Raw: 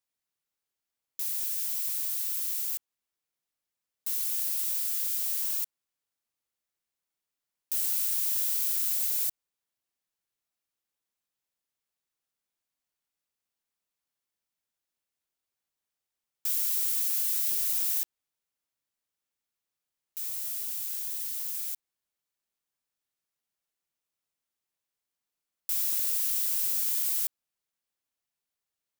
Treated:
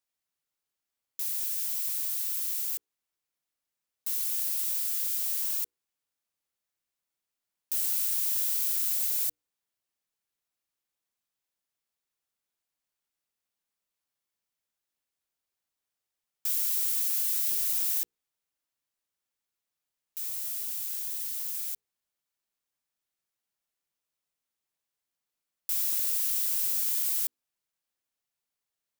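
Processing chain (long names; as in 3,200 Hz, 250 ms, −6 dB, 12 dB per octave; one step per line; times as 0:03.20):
mains-hum notches 60/120/180/240/300/360/420/480 Hz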